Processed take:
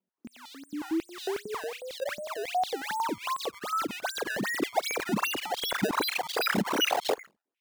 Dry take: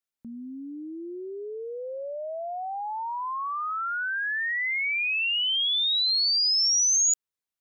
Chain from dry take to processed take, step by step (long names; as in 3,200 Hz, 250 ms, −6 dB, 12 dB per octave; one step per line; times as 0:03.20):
in parallel at +1.5 dB: downward compressor, threshold −32 dBFS, peak gain reduction 10.5 dB
on the sum: flanger 0.67 Hz, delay 2.2 ms, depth 1.5 ms, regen +84%
on a send at −22.5 dB: convolution reverb RT60 0.65 s, pre-delay 102 ms
on the sum: sample-and-hold swept by an LFO 23×, swing 160% 2.6 Hz
0:00.70–0:01.82: double-tracking delay 37 ms −8 dB
high-pass on a step sequencer 11 Hz 200–3,700 Hz
level −5 dB